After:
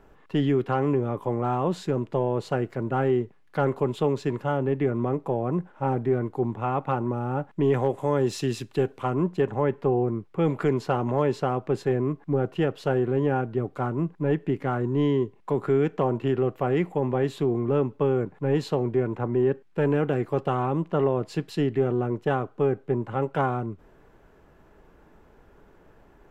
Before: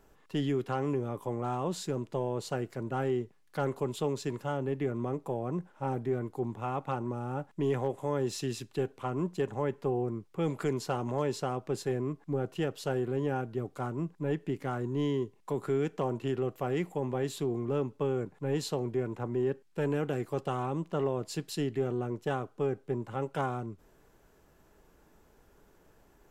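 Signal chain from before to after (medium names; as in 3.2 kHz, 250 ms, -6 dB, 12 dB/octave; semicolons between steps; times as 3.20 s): tone controls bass 0 dB, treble -14 dB, from 7.73 s treble -6 dB, from 9.13 s treble -15 dB; trim +7.5 dB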